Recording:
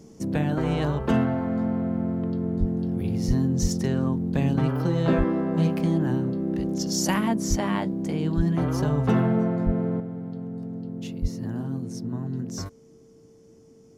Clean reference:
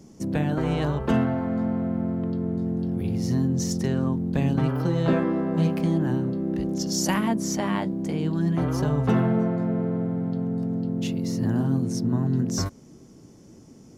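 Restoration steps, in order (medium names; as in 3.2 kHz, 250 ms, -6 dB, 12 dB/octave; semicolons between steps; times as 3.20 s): band-stop 450 Hz, Q 30; de-plosive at 2.59/3.27/3.61/5.17/7.49/8.36/9.65/11.21 s; gain correction +7 dB, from 10.00 s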